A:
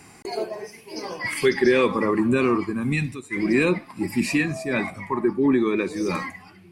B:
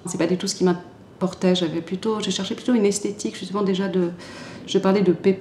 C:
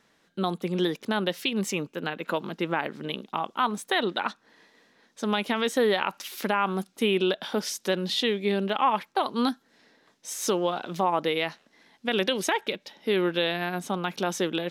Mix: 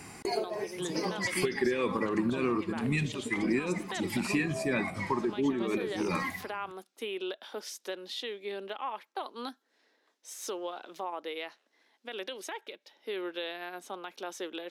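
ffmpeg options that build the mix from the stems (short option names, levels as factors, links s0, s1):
-filter_complex "[0:a]volume=1.12[s0];[1:a]acompressor=threshold=0.0316:ratio=2,asplit=2[s1][s2];[s2]adelay=4.2,afreqshift=0.74[s3];[s1][s3]amix=inputs=2:normalize=1,adelay=750,volume=0.531[s4];[2:a]highpass=f=300:w=0.5412,highpass=f=300:w=1.3066,alimiter=limit=0.15:level=0:latency=1:release=381,volume=0.335,asplit=2[s5][s6];[s6]apad=whole_len=296101[s7];[s0][s7]sidechaincompress=threshold=0.00708:ratio=8:attack=21:release=144[s8];[s8][s4][s5]amix=inputs=3:normalize=0,acompressor=threshold=0.0398:ratio=3"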